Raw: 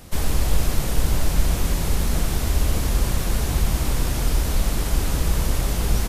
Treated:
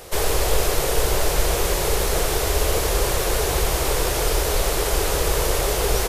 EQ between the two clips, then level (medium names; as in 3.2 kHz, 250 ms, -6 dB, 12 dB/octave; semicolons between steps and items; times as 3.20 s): resonant low shelf 320 Hz -9 dB, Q 3; +6.0 dB